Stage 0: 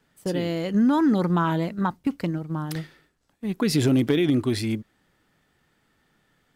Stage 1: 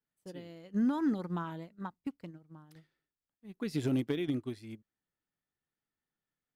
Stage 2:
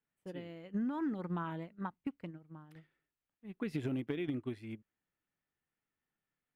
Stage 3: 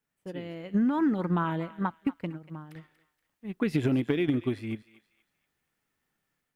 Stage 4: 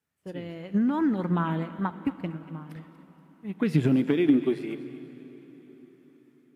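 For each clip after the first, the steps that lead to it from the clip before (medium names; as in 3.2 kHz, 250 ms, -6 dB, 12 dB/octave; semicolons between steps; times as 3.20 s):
upward expansion 2.5:1, over -30 dBFS; trim -8.5 dB
compression 6:1, threshold -34 dBFS, peak gain reduction 8.5 dB; resonant high shelf 3.5 kHz -8.5 dB, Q 1.5; trim +1 dB
level rider gain up to 5 dB; thinning echo 237 ms, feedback 36%, high-pass 1 kHz, level -15 dB; trim +5.5 dB
high-pass sweep 74 Hz -> 1.1 kHz, 3.21–5.59 s; plate-style reverb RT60 4.8 s, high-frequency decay 0.9×, DRR 13.5 dB; AAC 64 kbps 32 kHz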